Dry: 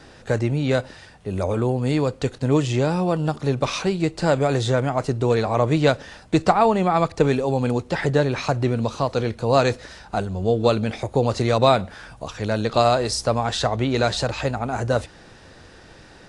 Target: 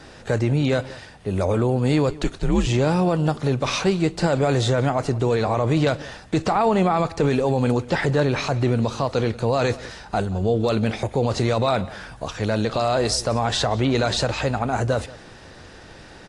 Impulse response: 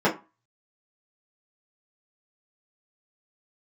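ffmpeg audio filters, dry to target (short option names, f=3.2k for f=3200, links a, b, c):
-filter_complex "[0:a]alimiter=limit=-13dB:level=0:latency=1:release=23,asettb=1/sr,asplit=3[a][b][c];[a]atrim=end=2.094[d];[b]atrim=start=2.09:end=2.67,asetpts=PTS-STARTPTS,afade=t=in:d=0.004:c=qsin,afade=t=out:st=0.576:d=0.004:c=qsin,afreqshift=-100[e];[c]atrim=start=2.666[f];[d][e]acrossfade=d=0.004:c1=hsin:c2=qsin[g];[g][f]acrossfade=d=0.004:c1=qsin:c2=hsin,asplit=2[h][i];[i]adelay=180.8,volume=-20dB,highshelf=f=4k:g=-4.07[j];[h][j]amix=inputs=2:normalize=0,volume=2.5dB" -ar 48000 -c:a aac -b:a 48k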